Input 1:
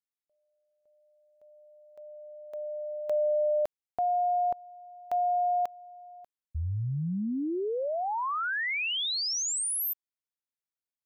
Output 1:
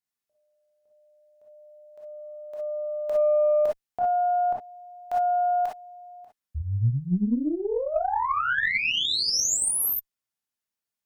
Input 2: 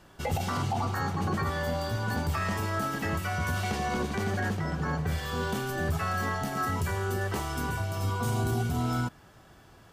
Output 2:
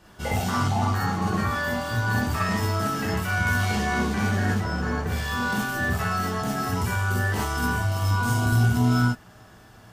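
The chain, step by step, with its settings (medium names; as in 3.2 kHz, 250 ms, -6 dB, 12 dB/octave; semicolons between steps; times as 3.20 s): gated-style reverb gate 80 ms rising, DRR -3.5 dB; Chebyshev shaper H 4 -27 dB, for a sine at -10.5 dBFS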